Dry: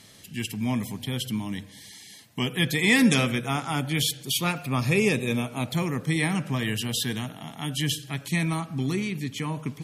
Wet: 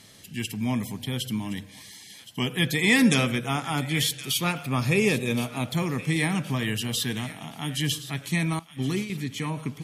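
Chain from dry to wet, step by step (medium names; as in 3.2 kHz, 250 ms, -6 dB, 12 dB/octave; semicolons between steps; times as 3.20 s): 8.59–9.10 s: gate -27 dBFS, range -19 dB; feedback echo behind a high-pass 1069 ms, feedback 42%, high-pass 1.5 kHz, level -14 dB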